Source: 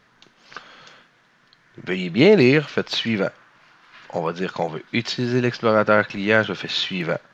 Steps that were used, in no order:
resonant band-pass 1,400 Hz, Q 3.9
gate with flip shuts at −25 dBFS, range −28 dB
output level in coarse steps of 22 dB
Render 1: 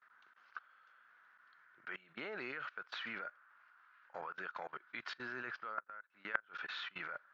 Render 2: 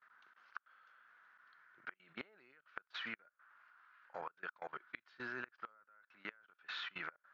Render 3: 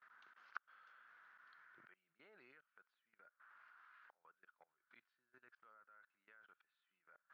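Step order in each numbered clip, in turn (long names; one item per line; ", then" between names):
resonant band-pass, then output level in coarse steps, then gate with flip
resonant band-pass, then gate with flip, then output level in coarse steps
gate with flip, then resonant band-pass, then output level in coarse steps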